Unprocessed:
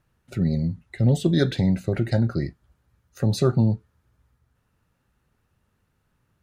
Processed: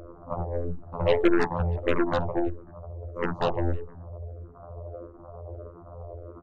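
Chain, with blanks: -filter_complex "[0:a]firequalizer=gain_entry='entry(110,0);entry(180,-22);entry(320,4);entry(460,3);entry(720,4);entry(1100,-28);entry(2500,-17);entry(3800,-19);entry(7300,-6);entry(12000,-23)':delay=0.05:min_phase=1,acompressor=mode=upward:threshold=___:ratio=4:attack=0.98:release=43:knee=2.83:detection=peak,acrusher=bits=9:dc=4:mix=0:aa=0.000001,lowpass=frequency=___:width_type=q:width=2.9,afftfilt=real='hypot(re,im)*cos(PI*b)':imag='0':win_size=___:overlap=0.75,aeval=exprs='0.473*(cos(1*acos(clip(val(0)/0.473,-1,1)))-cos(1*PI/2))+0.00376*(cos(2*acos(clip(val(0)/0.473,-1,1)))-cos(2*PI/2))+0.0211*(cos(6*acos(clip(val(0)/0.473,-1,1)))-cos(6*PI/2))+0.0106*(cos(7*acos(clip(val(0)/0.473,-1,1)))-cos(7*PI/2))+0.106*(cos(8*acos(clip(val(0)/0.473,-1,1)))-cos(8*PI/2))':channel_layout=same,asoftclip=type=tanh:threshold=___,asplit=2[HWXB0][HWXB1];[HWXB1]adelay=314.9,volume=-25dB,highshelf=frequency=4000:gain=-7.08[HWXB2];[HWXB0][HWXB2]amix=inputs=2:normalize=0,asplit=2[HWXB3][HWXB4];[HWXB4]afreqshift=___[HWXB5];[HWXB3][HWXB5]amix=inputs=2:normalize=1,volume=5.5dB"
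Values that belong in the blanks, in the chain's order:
-23dB, 640, 2048, -17dB, -1.6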